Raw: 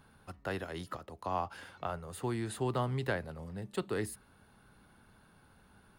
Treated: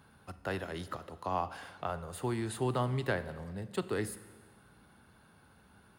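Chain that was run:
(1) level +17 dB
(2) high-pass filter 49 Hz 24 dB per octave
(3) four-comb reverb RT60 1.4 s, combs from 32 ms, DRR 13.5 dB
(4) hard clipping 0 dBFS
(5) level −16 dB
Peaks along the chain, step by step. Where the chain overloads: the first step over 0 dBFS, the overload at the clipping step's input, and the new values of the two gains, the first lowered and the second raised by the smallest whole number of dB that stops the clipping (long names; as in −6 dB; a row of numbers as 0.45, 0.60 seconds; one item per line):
−3.0, −2.5, −2.5, −2.5, −18.5 dBFS
no step passes full scale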